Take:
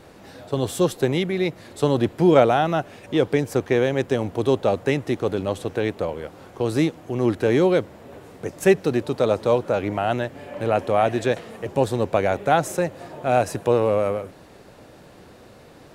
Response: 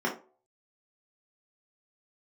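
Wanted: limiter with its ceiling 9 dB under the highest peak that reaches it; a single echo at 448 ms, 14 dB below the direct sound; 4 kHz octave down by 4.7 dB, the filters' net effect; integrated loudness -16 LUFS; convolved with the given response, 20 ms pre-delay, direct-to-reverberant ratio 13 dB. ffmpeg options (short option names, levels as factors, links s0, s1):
-filter_complex "[0:a]equalizer=f=4000:t=o:g=-6,alimiter=limit=0.282:level=0:latency=1,aecho=1:1:448:0.2,asplit=2[s0][s1];[1:a]atrim=start_sample=2205,adelay=20[s2];[s1][s2]afir=irnorm=-1:irlink=0,volume=0.0708[s3];[s0][s3]amix=inputs=2:normalize=0,volume=2.37"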